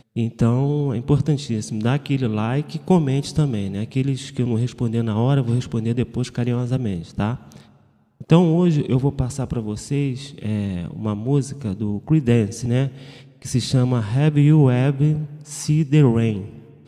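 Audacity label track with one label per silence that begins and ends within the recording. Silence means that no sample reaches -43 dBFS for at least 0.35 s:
7.700000	8.210000	silence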